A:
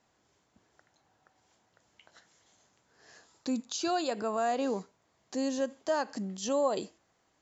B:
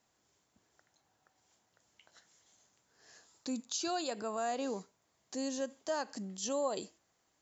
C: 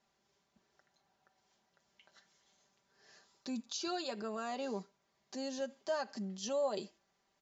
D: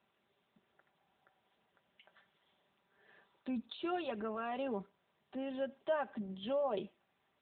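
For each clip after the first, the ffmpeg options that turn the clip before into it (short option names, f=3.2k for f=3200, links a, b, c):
-af "highshelf=f=5.1k:g=10,volume=-6dB"
-af "lowpass=f=5.8k:w=0.5412,lowpass=f=5.8k:w=1.3066,aecho=1:1:5.1:0.65,volume=-2.5dB"
-af "volume=2dB" -ar 8000 -c:a libopencore_amrnb -b:a 10200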